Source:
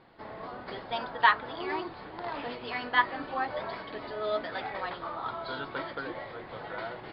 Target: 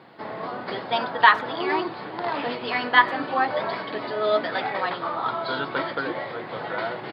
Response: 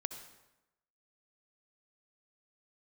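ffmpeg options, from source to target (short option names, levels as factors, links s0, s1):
-filter_complex "[0:a]highpass=f=120:w=0.5412,highpass=f=120:w=1.3066,asplit=2[s0][s1];[s1]adelay=100,highpass=300,lowpass=3400,asoftclip=type=hard:threshold=0.168,volume=0.0708[s2];[s0][s2]amix=inputs=2:normalize=0,alimiter=level_in=3.16:limit=0.891:release=50:level=0:latency=1,volume=0.891"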